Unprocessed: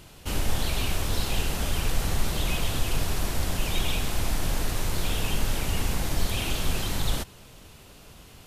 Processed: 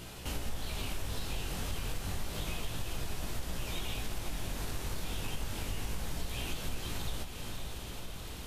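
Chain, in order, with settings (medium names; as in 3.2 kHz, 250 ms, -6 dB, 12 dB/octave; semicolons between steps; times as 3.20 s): chorus 0.3 Hz, delay 16.5 ms, depth 5.8 ms; echo that smears into a reverb 552 ms, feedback 49%, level -9.5 dB; compression 2.5:1, threshold -46 dBFS, peak gain reduction 17.5 dB; trim +6.5 dB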